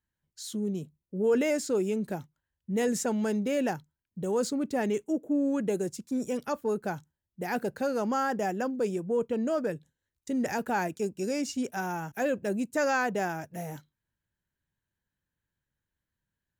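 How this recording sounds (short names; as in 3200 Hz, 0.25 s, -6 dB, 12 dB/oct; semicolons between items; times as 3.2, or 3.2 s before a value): noise floor -88 dBFS; spectral tilt -5.0 dB/oct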